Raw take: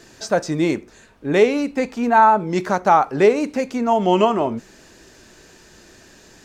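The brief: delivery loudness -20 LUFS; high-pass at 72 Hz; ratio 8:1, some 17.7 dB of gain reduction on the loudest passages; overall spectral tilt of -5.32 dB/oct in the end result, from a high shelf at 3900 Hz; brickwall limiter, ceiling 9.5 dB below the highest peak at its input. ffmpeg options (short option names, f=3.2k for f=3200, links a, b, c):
-af "highpass=72,highshelf=f=3.9k:g=-8.5,acompressor=threshold=-28dB:ratio=8,volume=16dB,alimiter=limit=-10.5dB:level=0:latency=1"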